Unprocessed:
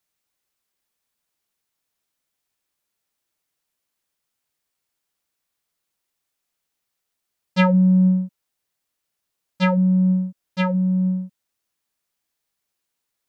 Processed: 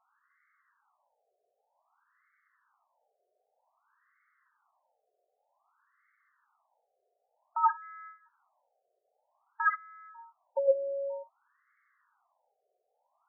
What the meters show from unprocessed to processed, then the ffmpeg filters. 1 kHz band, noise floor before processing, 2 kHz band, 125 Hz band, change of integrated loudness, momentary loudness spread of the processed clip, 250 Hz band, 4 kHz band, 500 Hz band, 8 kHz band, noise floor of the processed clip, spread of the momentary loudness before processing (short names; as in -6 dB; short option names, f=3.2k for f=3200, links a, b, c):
-1.0 dB, -80 dBFS, -5.5 dB, under -40 dB, -11.5 dB, 19 LU, under -40 dB, under -40 dB, -2.5 dB, n/a, -81 dBFS, 13 LU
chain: -filter_complex "[0:a]asplit=2[a][b];[b]highpass=f=720:p=1,volume=28dB,asoftclip=type=tanh:threshold=-6dB[c];[a][c]amix=inputs=2:normalize=0,lowpass=f=2.5k:p=1,volume=-6dB,acompressor=threshold=-17dB:ratio=6,afftfilt=real='re*between(b*sr/1024,530*pow(1600/530,0.5+0.5*sin(2*PI*0.53*pts/sr))/1.41,530*pow(1600/530,0.5+0.5*sin(2*PI*0.53*pts/sr))*1.41)':imag='im*between(b*sr/1024,530*pow(1600/530,0.5+0.5*sin(2*PI*0.53*pts/sr))/1.41,530*pow(1600/530,0.5+0.5*sin(2*PI*0.53*pts/sr))*1.41)':win_size=1024:overlap=0.75"